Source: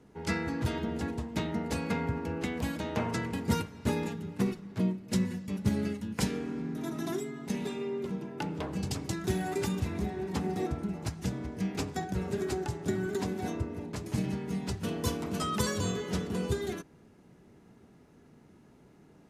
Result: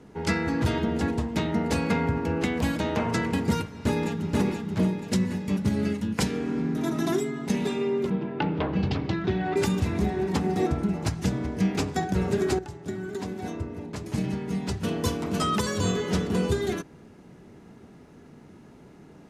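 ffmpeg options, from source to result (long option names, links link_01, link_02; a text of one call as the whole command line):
ffmpeg -i in.wav -filter_complex "[0:a]asplit=2[link_01][link_02];[link_02]afade=type=in:start_time=3.71:duration=0.01,afade=type=out:start_time=4.38:duration=0.01,aecho=0:1:480|960|1440|1920|2400|2880:0.749894|0.337452|0.151854|0.0683341|0.0307503|0.0138377[link_03];[link_01][link_03]amix=inputs=2:normalize=0,asplit=3[link_04][link_05][link_06];[link_04]afade=type=out:start_time=8.09:duration=0.02[link_07];[link_05]lowpass=frequency=3800:width=0.5412,lowpass=frequency=3800:width=1.3066,afade=type=in:start_time=8.09:duration=0.02,afade=type=out:start_time=9.56:duration=0.02[link_08];[link_06]afade=type=in:start_time=9.56:duration=0.02[link_09];[link_07][link_08][link_09]amix=inputs=3:normalize=0,asplit=2[link_10][link_11];[link_10]atrim=end=12.59,asetpts=PTS-STARTPTS,afade=type=out:start_time=12.586:duration=0.004:curve=hsin:silence=0.223872[link_12];[link_11]atrim=start=12.59,asetpts=PTS-STARTPTS,afade=type=in:duration=3.62:silence=0.223872[link_13];[link_12][link_13]concat=n=2:v=0:a=1,highshelf=frequency=11000:gain=-7.5,bandreject=frequency=60:width_type=h:width=6,bandreject=frequency=120:width_type=h:width=6,alimiter=limit=-22.5dB:level=0:latency=1:release=341,volume=8.5dB" out.wav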